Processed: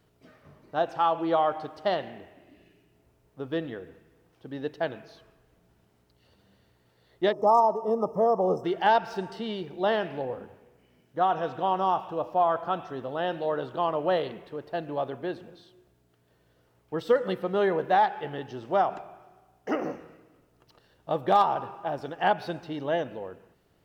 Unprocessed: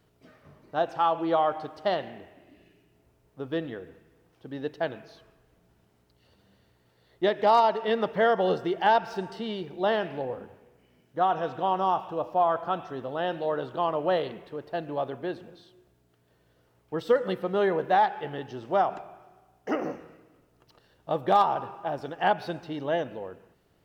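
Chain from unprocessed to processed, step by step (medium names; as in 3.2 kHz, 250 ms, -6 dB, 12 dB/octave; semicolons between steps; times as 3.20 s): time-frequency box 7.32–8.64 s, 1.3–5.1 kHz -28 dB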